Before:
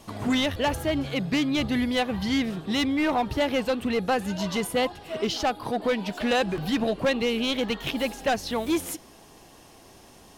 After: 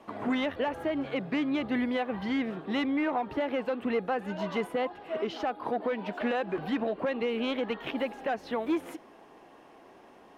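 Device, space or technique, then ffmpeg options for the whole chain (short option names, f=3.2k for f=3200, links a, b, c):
DJ mixer with the lows and highs turned down: -filter_complex "[0:a]acrossover=split=220 2500:gain=0.126 1 0.0891[a][b][c];[a][b][c]amix=inputs=3:normalize=0,alimiter=limit=-21dB:level=0:latency=1:release=145"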